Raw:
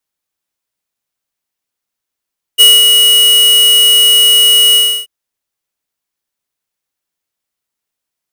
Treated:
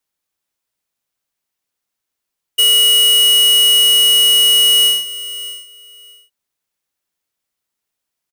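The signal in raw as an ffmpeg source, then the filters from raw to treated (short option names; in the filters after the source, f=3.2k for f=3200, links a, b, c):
-f lavfi -i "aevalsrc='0.708*(2*lt(mod(2910*t,1),0.5)-1)':d=2.483:s=44100,afade=t=in:d=0.028,afade=t=out:st=0.028:d=0.207:silence=0.631,afade=t=out:st=2.17:d=0.313"
-af "alimiter=limit=-10.5dB:level=0:latency=1,aecho=1:1:619|1238:0.168|0.0319"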